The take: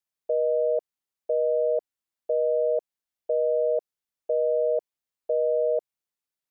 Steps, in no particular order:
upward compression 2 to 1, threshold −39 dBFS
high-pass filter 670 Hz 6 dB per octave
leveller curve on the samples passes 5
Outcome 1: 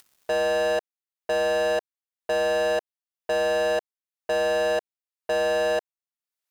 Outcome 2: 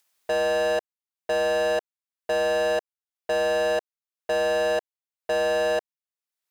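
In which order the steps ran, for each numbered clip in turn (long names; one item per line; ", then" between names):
upward compression, then high-pass filter, then leveller curve on the samples
high-pass filter, then leveller curve on the samples, then upward compression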